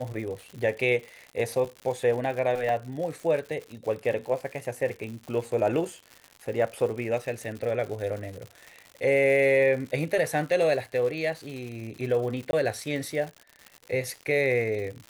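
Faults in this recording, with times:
crackle 150/s -35 dBFS
2.69 gap 2.1 ms
12.51–12.53 gap 21 ms

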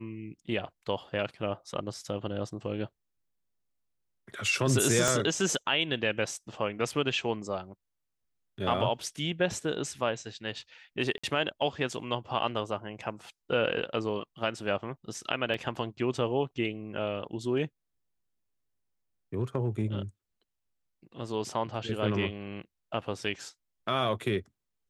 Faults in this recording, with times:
5.08 pop
11.18–11.23 gap 55 ms
15.54 gap 2.5 ms

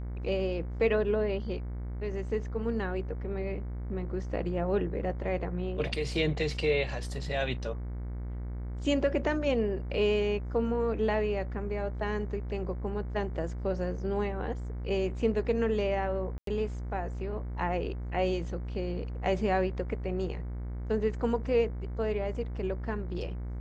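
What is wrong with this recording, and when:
buzz 60 Hz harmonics 38 -36 dBFS
16.38–16.47 gap 93 ms

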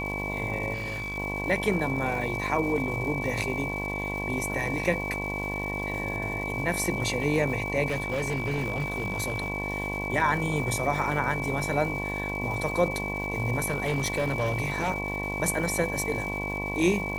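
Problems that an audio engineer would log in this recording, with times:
buzz 50 Hz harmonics 22 -34 dBFS
crackle 540/s -37 dBFS
tone 2300 Hz -32 dBFS
0.73–1.18 clipped -29.5 dBFS
7.88–9.5 clipped -24 dBFS
13.62–14.91 clipped -22 dBFS

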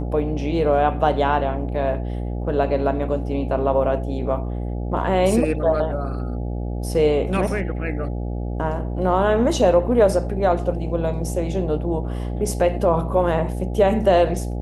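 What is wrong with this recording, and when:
buzz 60 Hz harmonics 14 -26 dBFS

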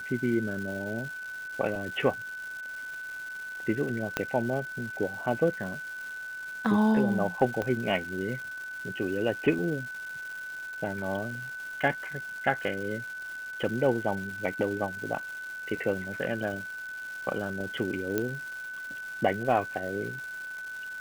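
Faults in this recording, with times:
crackle 530/s -38 dBFS
tone 1500 Hz -36 dBFS
4.17 pop -11 dBFS
7.62 pop -18 dBFS
18.18 pop -14 dBFS

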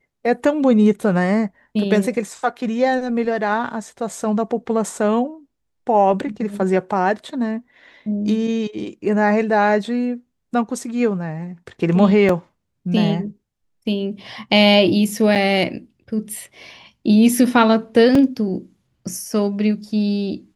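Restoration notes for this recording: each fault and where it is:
12.29 gap 3 ms
15.35–15.36 gap 7.3 ms
18.15 gap 3.4 ms

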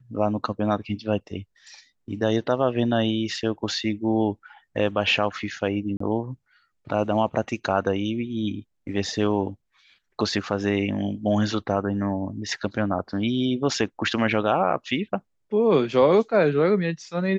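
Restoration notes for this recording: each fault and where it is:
5.97–6 gap 34 ms

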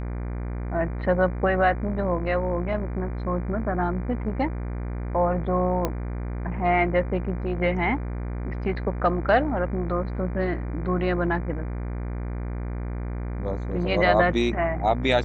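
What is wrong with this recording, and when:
buzz 60 Hz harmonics 40 -30 dBFS
5.85 pop -11 dBFS

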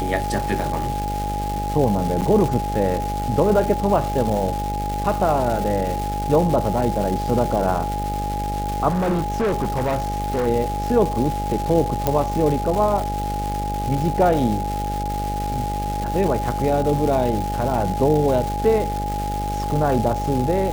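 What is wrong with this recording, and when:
buzz 50 Hz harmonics 14 -27 dBFS
crackle 570/s -25 dBFS
tone 830 Hz -25 dBFS
2.21–2.22 gap 7.9 ms
8.88–10.48 clipped -17.5 dBFS
12.07 pop -5 dBFS

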